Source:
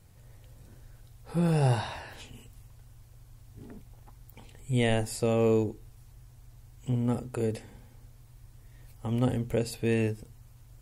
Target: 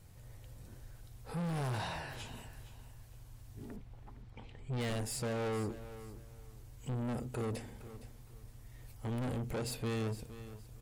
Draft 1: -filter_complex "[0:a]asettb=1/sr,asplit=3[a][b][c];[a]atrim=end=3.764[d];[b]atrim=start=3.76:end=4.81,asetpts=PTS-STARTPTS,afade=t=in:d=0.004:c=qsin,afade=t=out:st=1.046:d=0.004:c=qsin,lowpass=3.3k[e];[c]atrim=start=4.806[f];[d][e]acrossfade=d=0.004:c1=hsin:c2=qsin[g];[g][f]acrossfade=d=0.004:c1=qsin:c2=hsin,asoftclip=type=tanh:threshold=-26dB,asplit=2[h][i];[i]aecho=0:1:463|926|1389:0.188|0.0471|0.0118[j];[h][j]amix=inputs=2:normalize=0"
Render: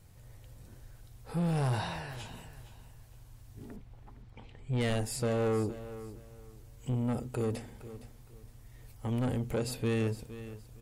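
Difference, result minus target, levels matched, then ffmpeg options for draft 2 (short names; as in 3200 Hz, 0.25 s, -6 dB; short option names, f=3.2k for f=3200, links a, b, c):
soft clip: distortion -6 dB
-filter_complex "[0:a]asettb=1/sr,asplit=3[a][b][c];[a]atrim=end=3.764[d];[b]atrim=start=3.76:end=4.81,asetpts=PTS-STARTPTS,afade=t=in:d=0.004:c=qsin,afade=t=out:st=1.046:d=0.004:c=qsin,lowpass=3.3k[e];[c]atrim=start=4.806[f];[d][e]acrossfade=d=0.004:c1=hsin:c2=qsin[g];[g][f]acrossfade=d=0.004:c1=qsin:c2=hsin,asoftclip=type=tanh:threshold=-34dB,asplit=2[h][i];[i]aecho=0:1:463|926|1389:0.188|0.0471|0.0118[j];[h][j]amix=inputs=2:normalize=0"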